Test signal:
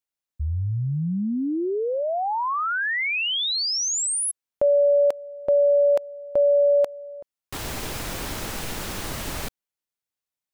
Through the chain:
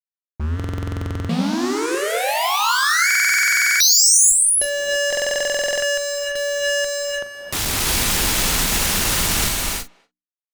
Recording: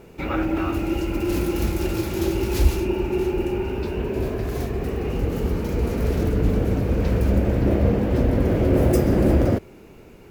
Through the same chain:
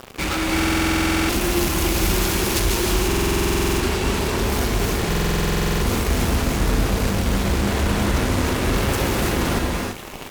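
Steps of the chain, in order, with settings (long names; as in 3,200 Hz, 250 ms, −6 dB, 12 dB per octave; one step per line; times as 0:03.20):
fuzz pedal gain 38 dB, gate −41 dBFS
high-shelf EQ 3,000 Hz +7 dB
reversed playback
upward compression, threshold −18 dBFS
reversed playback
far-end echo of a speakerphone 240 ms, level −28 dB
dynamic equaliser 550 Hz, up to −5 dB, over −30 dBFS, Q 1
mains-hum notches 60/120/180/240/300 Hz
double-tracking delay 40 ms −13 dB
reverb whose tail is shaped and stops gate 360 ms rising, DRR −0.5 dB
buffer that repeats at 0:00.55/0:03.06/0:05.08, samples 2,048, times 15
highs frequency-modulated by the lows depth 0.16 ms
level −8 dB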